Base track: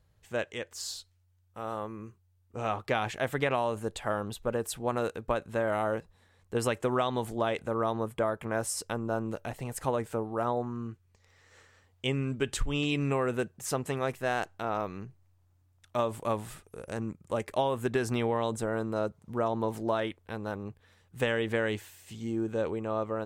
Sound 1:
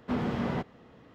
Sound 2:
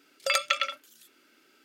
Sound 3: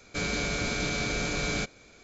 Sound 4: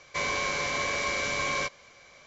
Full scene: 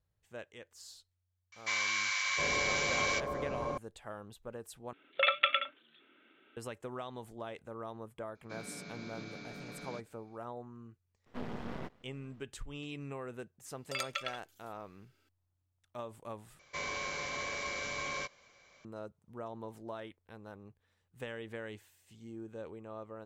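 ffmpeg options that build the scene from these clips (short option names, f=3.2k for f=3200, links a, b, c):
-filter_complex "[4:a]asplit=2[a][b];[2:a]asplit=2[c][d];[0:a]volume=-14dB[e];[a]acrossover=split=1100[f][g];[f]adelay=710[h];[h][g]amix=inputs=2:normalize=0[i];[c]aresample=8000,aresample=44100[j];[3:a]highpass=f=130:w=0.5412,highpass=f=130:w=1.3066,equalizer=f=180:t=q:w=4:g=6,equalizer=f=270:t=q:w=4:g=5,equalizer=f=3k:t=q:w=4:g=-6,lowpass=f=5.3k:w=0.5412,lowpass=f=5.3k:w=1.3066[k];[1:a]aeval=exprs='max(val(0),0)':c=same[l];[e]asplit=3[m][n][o];[m]atrim=end=4.934[p];[j]atrim=end=1.64,asetpts=PTS-STARTPTS,volume=-1.5dB[q];[n]atrim=start=6.566:end=16.594[r];[b]atrim=end=2.26,asetpts=PTS-STARTPTS,volume=-9dB[s];[o]atrim=start=18.846[t];[i]atrim=end=2.26,asetpts=PTS-STARTPTS,volume=-1.5dB,afade=t=in:d=0.004:c=hsin,afade=t=out:st=2.256:d=0.004:c=hsin,adelay=1520[u];[k]atrim=end=2.03,asetpts=PTS-STARTPTS,volume=-17.5dB,afade=t=in:d=0.004:c=hsin,afade=t=out:st=2.026:d=0.004:c=hsin,adelay=8350[v];[l]atrim=end=1.14,asetpts=PTS-STARTPTS,volume=-7dB,afade=t=in:d=0.004:c=hsin,afade=t=out:st=1.136:d=0.004:c=hsin,adelay=11260[w];[d]atrim=end=1.64,asetpts=PTS-STARTPTS,volume=-12dB,afade=t=in:d=0.004:c=hsin,afade=t=out:st=1.636:d=0.004:c=hsin,adelay=13650[x];[p][q]acrossfade=d=0.004:c1=hsin:c2=hsin[y];[y][r]acrossfade=d=0.004:c1=hsin:c2=hsin[z];[z][s]acrossfade=d=0.004:c1=hsin:c2=hsin[aa];[aa][t]acrossfade=d=0.004:c1=hsin:c2=hsin[ab];[ab][u][v][w][x]amix=inputs=5:normalize=0"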